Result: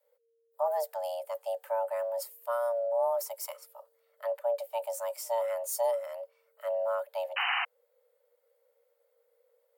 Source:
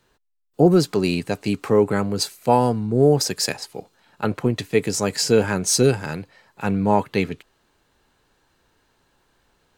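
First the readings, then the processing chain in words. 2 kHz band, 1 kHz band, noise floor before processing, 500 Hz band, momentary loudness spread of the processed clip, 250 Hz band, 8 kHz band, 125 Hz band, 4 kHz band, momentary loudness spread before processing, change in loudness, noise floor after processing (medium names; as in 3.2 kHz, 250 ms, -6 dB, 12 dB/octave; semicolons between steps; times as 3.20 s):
-7.0 dB, -9.5 dB, -66 dBFS, -9.5 dB, 10 LU, under -40 dB, -16.5 dB, under -40 dB, -13.5 dB, 12 LU, -12.0 dB, -74 dBFS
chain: FFT filter 110 Hz 0 dB, 230 Hz -17 dB, 5.4 kHz -22 dB, 9.5 kHz -10 dB, 14 kHz +2 dB; painted sound noise, 7.36–7.65 s, 240–2600 Hz -28 dBFS; frequency shift +460 Hz; trim -1.5 dB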